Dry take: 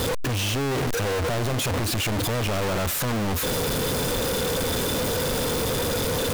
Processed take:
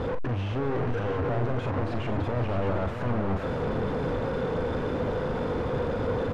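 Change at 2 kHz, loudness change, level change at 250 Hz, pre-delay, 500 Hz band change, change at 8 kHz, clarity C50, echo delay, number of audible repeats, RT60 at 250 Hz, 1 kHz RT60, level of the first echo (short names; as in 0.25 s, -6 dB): -8.0 dB, -4.5 dB, -2.0 dB, none, -2.0 dB, under -30 dB, none, 41 ms, 3, none, none, -8.5 dB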